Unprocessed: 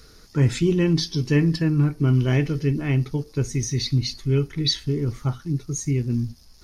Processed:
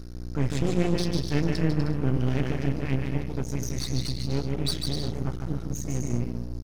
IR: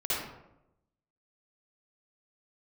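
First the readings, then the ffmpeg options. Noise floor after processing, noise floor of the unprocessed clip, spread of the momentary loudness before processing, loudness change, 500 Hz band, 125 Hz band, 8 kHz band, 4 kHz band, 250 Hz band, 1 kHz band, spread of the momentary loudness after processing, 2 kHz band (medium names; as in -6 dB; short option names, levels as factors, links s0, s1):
-35 dBFS, -50 dBFS, 7 LU, -5.5 dB, -4.5 dB, -6.5 dB, -5.5 dB, -6.0 dB, -5.0 dB, +1.0 dB, 6 LU, -5.0 dB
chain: -af "aeval=exprs='val(0)+0.0282*(sin(2*PI*60*n/s)+sin(2*PI*2*60*n/s)/2+sin(2*PI*3*60*n/s)/3+sin(2*PI*4*60*n/s)/4+sin(2*PI*5*60*n/s)/5)':c=same,aecho=1:1:150|247.5|310.9|352.1|378.8:0.631|0.398|0.251|0.158|0.1,aeval=exprs='max(val(0),0)':c=same,volume=0.631"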